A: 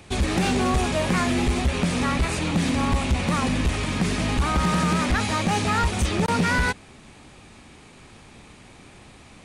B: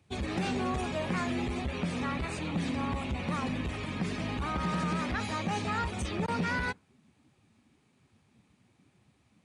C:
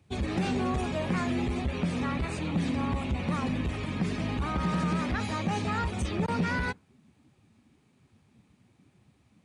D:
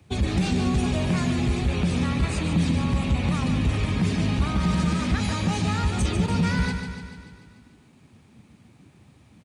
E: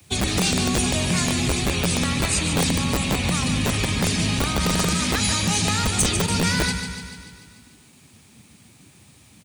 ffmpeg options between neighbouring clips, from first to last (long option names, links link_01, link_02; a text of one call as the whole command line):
ffmpeg -i in.wav -af "highpass=76,afftdn=noise_reduction=14:noise_floor=-36,volume=-9dB" out.wav
ffmpeg -i in.wav -af "lowshelf=frequency=420:gain=4.5" out.wav
ffmpeg -i in.wav -filter_complex "[0:a]acrossover=split=200|3000[link_01][link_02][link_03];[link_02]acompressor=threshold=-40dB:ratio=4[link_04];[link_01][link_04][link_03]amix=inputs=3:normalize=0,aecho=1:1:146|292|438|584|730|876|1022|1168:0.422|0.249|0.147|0.0866|0.0511|0.0301|0.0178|0.0105,volume=8.5dB" out.wav
ffmpeg -i in.wav -filter_complex "[0:a]acrossover=split=240|390|1800[link_01][link_02][link_03][link_04];[link_01]aeval=exprs='(mod(7.5*val(0)+1,2)-1)/7.5':channel_layout=same[link_05];[link_05][link_02][link_03][link_04]amix=inputs=4:normalize=0,crystalizer=i=5.5:c=0,asoftclip=type=hard:threshold=-11.5dB" out.wav